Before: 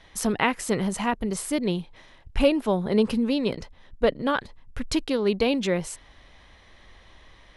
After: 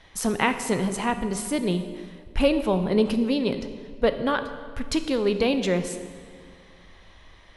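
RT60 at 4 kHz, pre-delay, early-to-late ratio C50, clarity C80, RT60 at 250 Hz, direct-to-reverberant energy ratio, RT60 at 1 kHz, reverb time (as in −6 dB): 1.4 s, 11 ms, 10.0 dB, 11.0 dB, 2.3 s, 8.5 dB, 1.8 s, 1.9 s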